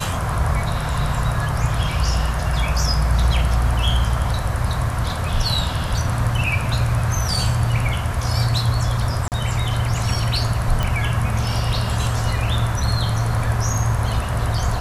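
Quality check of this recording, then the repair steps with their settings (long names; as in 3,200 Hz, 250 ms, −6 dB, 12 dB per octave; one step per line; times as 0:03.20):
0:09.28–0:09.32: drop-out 38 ms
0:10.83: click −8 dBFS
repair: click removal
repair the gap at 0:09.28, 38 ms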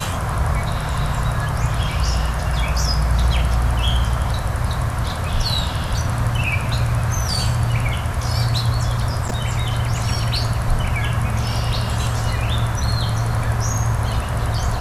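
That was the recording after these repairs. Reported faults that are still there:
none of them is left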